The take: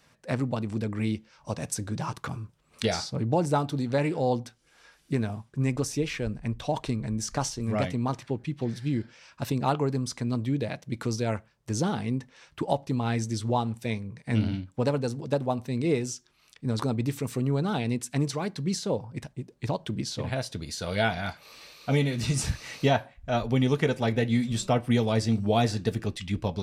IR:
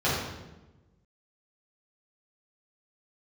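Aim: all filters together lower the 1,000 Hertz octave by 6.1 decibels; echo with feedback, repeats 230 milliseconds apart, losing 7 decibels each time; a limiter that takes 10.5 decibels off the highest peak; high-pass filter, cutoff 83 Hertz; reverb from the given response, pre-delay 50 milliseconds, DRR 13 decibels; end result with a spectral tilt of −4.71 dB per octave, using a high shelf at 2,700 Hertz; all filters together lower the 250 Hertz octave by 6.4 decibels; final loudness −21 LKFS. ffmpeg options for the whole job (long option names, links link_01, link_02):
-filter_complex "[0:a]highpass=83,equalizer=frequency=250:width_type=o:gain=-7.5,equalizer=frequency=1000:width_type=o:gain=-9,highshelf=frequency=2700:gain=4.5,alimiter=limit=-20dB:level=0:latency=1,aecho=1:1:230|460|690|920|1150:0.447|0.201|0.0905|0.0407|0.0183,asplit=2[link_01][link_02];[1:a]atrim=start_sample=2205,adelay=50[link_03];[link_02][link_03]afir=irnorm=-1:irlink=0,volume=-27.5dB[link_04];[link_01][link_04]amix=inputs=2:normalize=0,volume=10.5dB"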